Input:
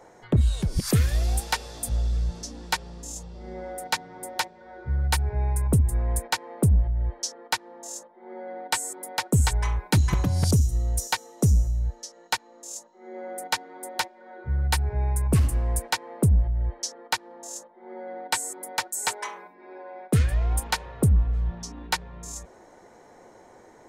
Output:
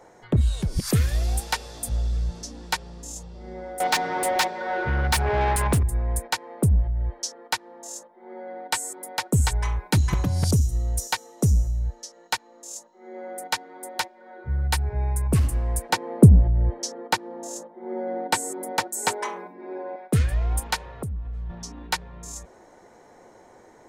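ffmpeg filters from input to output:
ffmpeg -i in.wav -filter_complex "[0:a]asettb=1/sr,asplit=3[link_01][link_02][link_03];[link_01]atrim=end=3.804[link_04];[link_02]atrim=start=3.8:end=5.83,asetpts=PTS-STARTPTS,afade=type=in:duration=0.004:curve=qsin,afade=type=out:start_time=2.026:duration=0.004:curve=qsin,asplit=2[link_05][link_06];[link_06]highpass=frequency=720:poles=1,volume=28dB,asoftclip=type=tanh:threshold=-13.5dB[link_07];[link_05][link_07]amix=inputs=2:normalize=0,lowpass=frequency=5700:poles=1,volume=-6dB[link_08];[link_03]atrim=start=5.826[link_09];[link_04][link_08]acrossfade=duration=0.004:curve1=hsin:curve2=qsin[link_10];[link_10][link_09]acrossfade=duration=0.004:curve1=qsin:curve2=hsin,asettb=1/sr,asplit=3[link_11][link_12][link_13];[link_11]atrim=end=15.894[link_14];[link_12]atrim=start=15.89:end=19.96,asetpts=PTS-STARTPTS,afade=type=in:duration=0.004:curve=qsin,afade=type=out:start_time=4.066:duration=0.004:curve=qsin,equalizer=frequency=230:width=0.36:gain=12[link_15];[link_13]atrim=start=19.956[link_16];[link_14][link_15]acrossfade=duration=0.004:curve1=hsin:curve2=qsin[link_17];[link_17][link_16]acrossfade=duration=0.004:curve1=qsin:curve2=hsin,asettb=1/sr,asplit=3[link_18][link_19][link_20];[link_18]atrim=end=20.914[link_21];[link_19]atrim=start=20.91:end=21.5,asetpts=PTS-STARTPTS,afade=type=in:duration=0.004:curve=qsin,afade=type=out:start_time=0.586:duration=0.004:curve=qsin,acompressor=threshold=-30dB:ratio=5:attack=3.2:release=140:knee=1:detection=peak[link_22];[link_20]atrim=start=21.496[link_23];[link_21][link_22]acrossfade=duration=0.004:curve1=hsin:curve2=qsin[link_24];[link_24][link_23]acrossfade=duration=0.004:curve1=qsin:curve2=hsin" out.wav

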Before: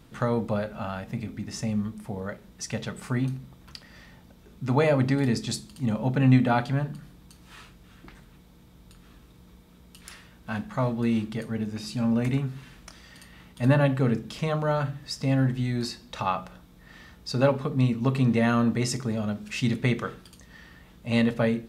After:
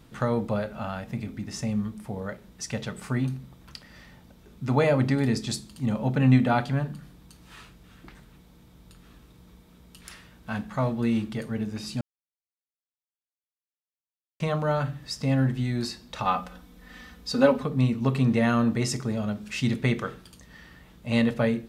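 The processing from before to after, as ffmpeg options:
ffmpeg -i in.wav -filter_complex "[0:a]asettb=1/sr,asplit=3[link_01][link_02][link_03];[link_01]atrim=end=16.254[link_04];[link_02]atrim=start=16.25:end=17.63,asetpts=PTS-STARTPTS,afade=type=in:duration=0.004:curve=qsin,afade=type=out:start_time=1.376:duration=0.004:curve=qsin,aecho=1:1:4:0.88,atrim=end_sample=60858[link_05];[link_03]atrim=start=17.626[link_06];[link_04][link_05]acrossfade=duration=0.004:curve1=hsin:curve2=qsin[link_07];[link_07][link_06]acrossfade=duration=0.004:curve1=qsin:curve2=hsin,asplit=3[link_08][link_09][link_10];[link_08]atrim=end=12.01,asetpts=PTS-STARTPTS,afade=type=out:start_time=12.006:duration=0.004:curve=hsin[link_11];[link_09]atrim=start=12.01:end=14.4,asetpts=PTS-STARTPTS,volume=0[link_12];[link_10]atrim=start=14.4,asetpts=PTS-STARTPTS,afade=type=in:duration=0.004:curve=hsin[link_13];[link_11][link_12][link_13]concat=n=3:v=0:a=1" out.wav

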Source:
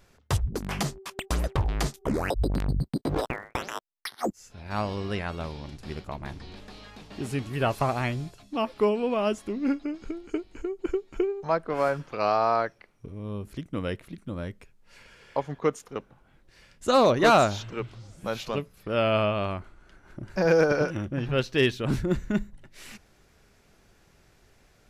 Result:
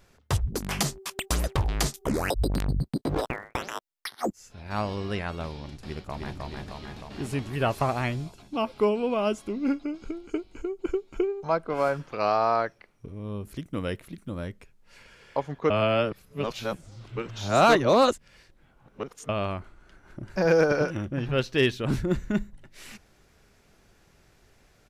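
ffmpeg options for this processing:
ffmpeg -i in.wav -filter_complex "[0:a]asettb=1/sr,asplit=3[link_01][link_02][link_03];[link_01]atrim=end=0.484[link_04];[link_02]atrim=start=0.48:end=2.65,asetpts=PTS-STARTPTS,afade=type=in:duration=0.004:curve=qsin,afade=type=out:start_time=2.166:duration=0.004:curve=qsin,highshelf=frequency=3500:gain=8.5[link_05];[link_03]atrim=start=2.646[link_06];[link_04][link_05]acrossfade=duration=0.004:curve1=hsin:curve2=qsin[link_07];[link_07][link_06]acrossfade=duration=0.004:curve1=qsin:curve2=hsin,asplit=2[link_08][link_09];[link_09]afade=type=in:start_time=5.78:duration=0.01,afade=type=out:start_time=6.4:duration=0.01,aecho=0:1:310|620|930|1240|1550|1860|2170|2480|2790|3100|3410|3720:0.749894|0.524926|0.367448|0.257214|0.18005|0.126035|0.0882243|0.061757|0.0432299|0.0302609|0.0211827|0.0148279[link_10];[link_08][link_10]amix=inputs=2:normalize=0,asettb=1/sr,asplit=3[link_11][link_12][link_13];[link_11]atrim=end=8.244[link_14];[link_12]atrim=start=8.24:end=11.91,asetpts=PTS-STARTPTS,afade=type=in:duration=0.004:curve=qsin,afade=type=out:start_time=3.666:duration=0.004:curve=qsin,asuperstop=centerf=1800:order=4:qfactor=7.1[link_15];[link_13]atrim=start=11.906[link_16];[link_14][link_15]acrossfade=duration=0.004:curve1=hsin:curve2=qsin[link_17];[link_17][link_16]acrossfade=duration=0.004:curve1=qsin:curve2=hsin,asettb=1/sr,asplit=3[link_18][link_19][link_20];[link_18]atrim=end=13.454[link_21];[link_19]atrim=start=13.45:end=14.47,asetpts=PTS-STARTPTS,afade=type=in:duration=0.004:curve=qsin,afade=type=out:start_time=1.016:duration=0.004:curve=qsin,highshelf=frequency=9600:gain=9.5[link_22];[link_20]atrim=start=14.466[link_23];[link_21][link_22]acrossfade=duration=0.004:curve1=hsin:curve2=qsin[link_24];[link_24][link_23]acrossfade=duration=0.004:curve1=qsin:curve2=hsin,asplit=3[link_25][link_26][link_27];[link_25]atrim=end=15.702[link_28];[link_26]atrim=start=15.698:end=19.292,asetpts=PTS-STARTPTS,areverse[link_29];[link_27]atrim=start=19.288[link_30];[link_28][link_29]acrossfade=duration=0.004:curve1=hsin:curve2=hsin[link_31];[link_31][link_30]acrossfade=duration=0.004:curve1=hsin:curve2=hsin" out.wav

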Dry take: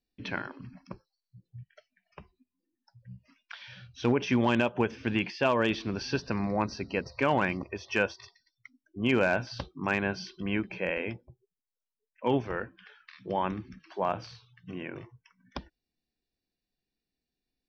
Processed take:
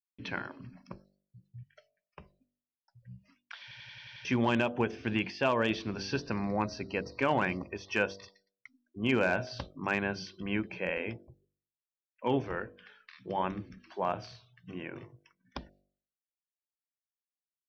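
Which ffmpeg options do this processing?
ffmpeg -i in.wav -filter_complex "[0:a]asplit=8[link_01][link_02][link_03][link_04][link_05][link_06][link_07][link_08];[link_01]atrim=end=3.712[link_09];[link_02]atrim=start=3.618:end=3.712[link_10];[link_03]atrim=start=3.618:end=3.712[link_11];[link_04]atrim=start=3.618:end=3.712[link_12];[link_05]atrim=start=3.618:end=3.712[link_13];[link_06]atrim=start=3.618:end=3.712[link_14];[link_07]atrim=start=3.618:end=3.712[link_15];[link_08]atrim=start=4.248[link_16];[link_09][link_10]acrossfade=duration=0.004:curve1=hsin:curve2=hsin[link_17];[link_17][link_11]acrossfade=duration=0.004:curve1=hsin:curve2=hsin[link_18];[link_18][link_12]acrossfade=duration=0.004:curve1=hsin:curve2=hsin[link_19];[link_19][link_13]acrossfade=duration=0.004:curve1=hsin:curve2=hsin[link_20];[link_20][link_14]acrossfade=duration=0.004:curve1=hsin:curve2=hsin[link_21];[link_21][link_15]acrossfade=duration=0.004:curve1=hsin:curve2=hsin[link_22];[link_22][link_16]acrossfade=duration=0.004:curve1=hsin:curve2=hsin,agate=range=-33dB:threshold=-59dB:ratio=3:detection=peak,bandreject=frequency=48.64:width_type=h:width=4,bandreject=frequency=97.28:width_type=h:width=4,bandreject=frequency=145.92:width_type=h:width=4,bandreject=frequency=194.56:width_type=h:width=4,bandreject=frequency=243.2:width_type=h:width=4,bandreject=frequency=291.84:width_type=h:width=4,bandreject=frequency=340.48:width_type=h:width=4,bandreject=frequency=389.12:width_type=h:width=4,bandreject=frequency=437.76:width_type=h:width=4,bandreject=frequency=486.4:width_type=h:width=4,bandreject=frequency=535.04:width_type=h:width=4,bandreject=frequency=583.68:width_type=h:width=4,bandreject=frequency=632.32:width_type=h:width=4,bandreject=frequency=680.96:width_type=h:width=4,bandreject=frequency=729.6:width_type=h:width=4,volume=-2dB" out.wav

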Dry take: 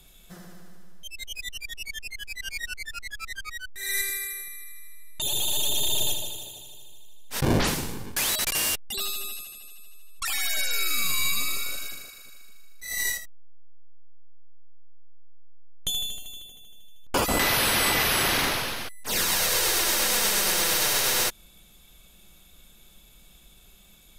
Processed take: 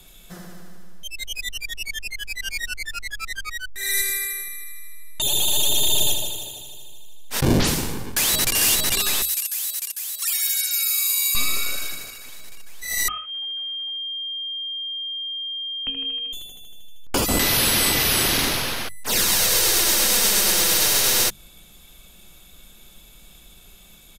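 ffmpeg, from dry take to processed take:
ffmpeg -i in.wav -filter_complex "[0:a]asplit=2[link_01][link_02];[link_02]afade=type=in:start_time=7.88:duration=0.01,afade=type=out:start_time=8.56:duration=0.01,aecho=0:1:450|900|1350|1800|2250|2700|3150|3600|4050|4500|4950|5400:0.841395|0.588977|0.412284|0.288599|0.202019|0.141413|0.0989893|0.0692925|0.0485048|0.0339533|0.0237673|0.0166371[link_03];[link_01][link_03]amix=inputs=2:normalize=0,asettb=1/sr,asplit=3[link_04][link_05][link_06];[link_04]atrim=end=9.224[link_07];[link_05]atrim=start=9.22:end=11.35,asetpts=PTS-STARTPTS,afade=type=in:duration=0.004:curve=qsin,afade=type=out:start_time=2.126:duration=0.004:curve=qsin,aderivative[link_08];[link_06]atrim=start=11.346[link_09];[link_07][link_08]acrossfade=duration=0.004:curve1=hsin:curve2=qsin[link_10];[link_10][link_09]acrossfade=duration=0.004:curve1=qsin:curve2=hsin,asettb=1/sr,asplit=3[link_11][link_12][link_13];[link_11]atrim=end=13.084[link_14];[link_12]atrim=start=13.08:end=16.33,asetpts=PTS-STARTPTS,afade=type=in:duration=0.004:curve=qsin,afade=type=out:start_time=3.246:duration=0.004:curve=qsin,lowpass=frequency=2700:width_type=q:width=0.5098,lowpass=frequency=2700:width_type=q:width=0.6013,lowpass=frequency=2700:width_type=q:width=0.9,lowpass=frequency=2700:width_type=q:width=2.563,afreqshift=-3200[link_15];[link_13]atrim=start=16.326[link_16];[link_14][link_15]acrossfade=duration=0.004:curve1=hsin:curve2=qsin[link_17];[link_17][link_16]acrossfade=duration=0.004:curve1=qsin:curve2=hsin,bandreject=frequency=50:width_type=h:width=6,bandreject=frequency=100:width_type=h:width=6,bandreject=frequency=150:width_type=h:width=6,bandreject=frequency=200:width_type=h:width=6,acrossover=split=410|3000[link_18][link_19][link_20];[link_19]acompressor=threshold=-34dB:ratio=4[link_21];[link_18][link_21][link_20]amix=inputs=3:normalize=0,volume=6dB" out.wav

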